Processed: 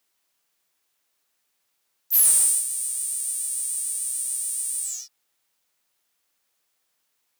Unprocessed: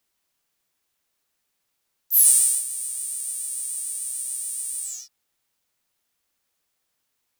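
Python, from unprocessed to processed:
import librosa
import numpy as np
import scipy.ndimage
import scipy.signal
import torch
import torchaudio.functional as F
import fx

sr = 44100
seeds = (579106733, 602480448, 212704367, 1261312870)

y = fx.low_shelf(x, sr, hz=220.0, db=-9.5)
y = 10.0 ** (-14.0 / 20.0) * np.tanh(y / 10.0 ** (-14.0 / 20.0))
y = y * librosa.db_to_amplitude(2.5)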